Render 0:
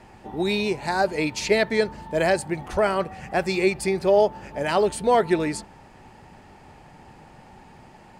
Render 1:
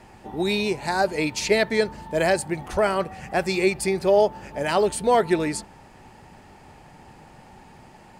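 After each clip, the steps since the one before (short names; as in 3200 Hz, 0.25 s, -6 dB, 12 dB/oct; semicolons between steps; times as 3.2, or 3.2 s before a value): high shelf 6900 Hz +5.5 dB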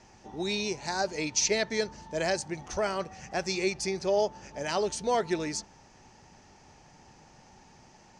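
synth low-pass 6000 Hz, resonance Q 6.6; gain -8.5 dB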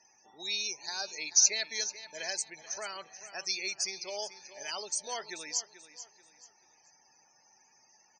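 loudest bins only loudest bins 64; differentiator; feedback echo 0.435 s, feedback 33%, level -14 dB; gain +7 dB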